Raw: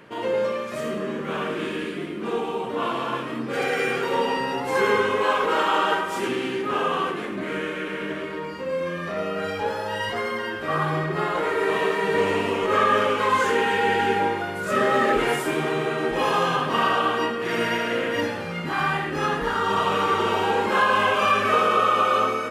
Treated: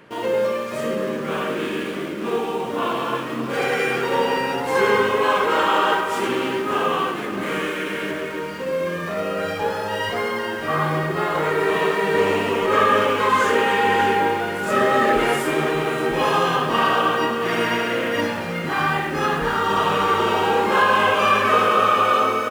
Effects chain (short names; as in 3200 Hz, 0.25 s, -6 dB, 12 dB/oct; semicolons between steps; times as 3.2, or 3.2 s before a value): 7.41–8.11 high shelf 4100 Hz +9 dB; in parallel at -9.5 dB: bit-crush 6-bit; on the sum: echo 0.581 s -12.5 dB; reverb RT60 5.4 s, pre-delay 73 ms, DRR 14 dB